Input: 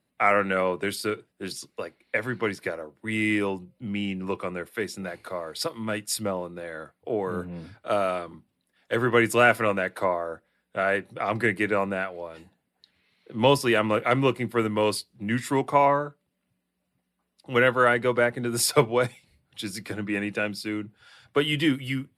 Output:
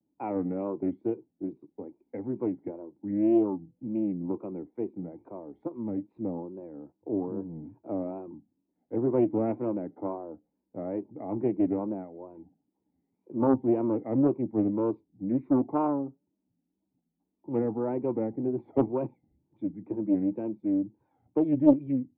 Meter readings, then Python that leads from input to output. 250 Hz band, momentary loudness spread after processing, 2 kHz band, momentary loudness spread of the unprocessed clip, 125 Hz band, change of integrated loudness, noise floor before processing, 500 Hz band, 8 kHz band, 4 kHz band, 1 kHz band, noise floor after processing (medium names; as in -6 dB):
+2.5 dB, 16 LU, under -30 dB, 15 LU, -5.5 dB, -4.0 dB, -77 dBFS, -5.5 dB, under -40 dB, under -40 dB, -12.0 dB, -81 dBFS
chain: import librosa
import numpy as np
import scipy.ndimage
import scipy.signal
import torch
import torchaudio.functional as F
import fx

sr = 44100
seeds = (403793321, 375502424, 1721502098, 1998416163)

y = fx.formant_cascade(x, sr, vowel='u')
y = fx.wow_flutter(y, sr, seeds[0], rate_hz=2.1, depth_cents=140.0)
y = fx.doppler_dist(y, sr, depth_ms=0.54)
y = F.gain(torch.from_numpy(y), 7.0).numpy()